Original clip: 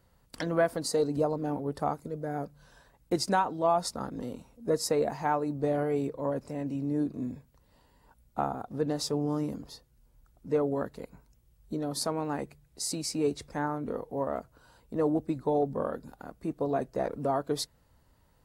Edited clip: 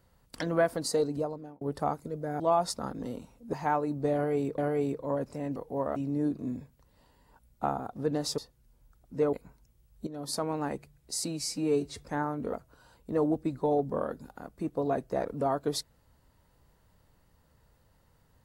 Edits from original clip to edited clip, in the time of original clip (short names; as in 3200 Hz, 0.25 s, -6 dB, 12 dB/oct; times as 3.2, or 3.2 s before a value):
0.96–1.61 fade out
2.4–3.57 cut
4.7–5.12 cut
5.73–6.17 loop, 2 plays
9.13–9.71 cut
10.66–11.01 cut
11.75–12.24 fade in equal-power, from -13 dB
12.94–13.43 stretch 1.5×
13.97–14.37 move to 6.71